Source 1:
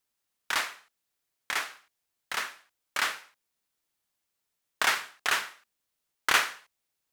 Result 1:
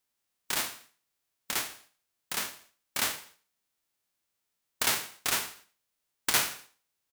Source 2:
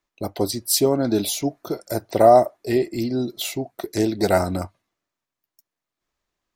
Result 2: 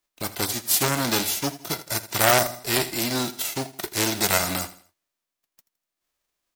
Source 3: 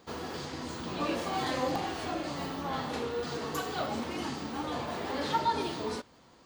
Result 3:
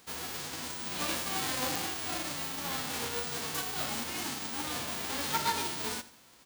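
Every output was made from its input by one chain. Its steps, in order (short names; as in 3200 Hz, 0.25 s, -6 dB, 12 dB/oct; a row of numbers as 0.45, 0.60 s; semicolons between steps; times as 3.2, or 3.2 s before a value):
spectral whitening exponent 0.3; on a send: feedback echo 82 ms, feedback 37%, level -17.5 dB; on the sum: core saturation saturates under 3100 Hz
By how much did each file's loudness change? -1.0, -2.0, +1.0 LU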